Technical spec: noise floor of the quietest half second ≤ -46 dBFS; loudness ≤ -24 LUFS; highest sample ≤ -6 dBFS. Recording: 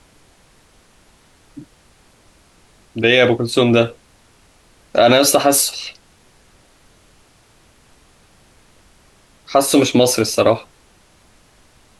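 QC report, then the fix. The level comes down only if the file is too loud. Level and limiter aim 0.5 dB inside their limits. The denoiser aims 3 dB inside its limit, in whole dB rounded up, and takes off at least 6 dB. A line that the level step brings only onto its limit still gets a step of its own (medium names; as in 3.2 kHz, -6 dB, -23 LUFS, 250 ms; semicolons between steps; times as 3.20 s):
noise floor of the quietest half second -52 dBFS: pass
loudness -15.0 LUFS: fail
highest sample -2.0 dBFS: fail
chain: trim -9.5 dB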